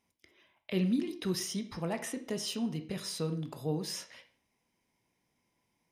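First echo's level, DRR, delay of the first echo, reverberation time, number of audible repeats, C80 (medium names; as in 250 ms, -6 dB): no echo, 8.0 dB, no echo, 0.45 s, no echo, 16.0 dB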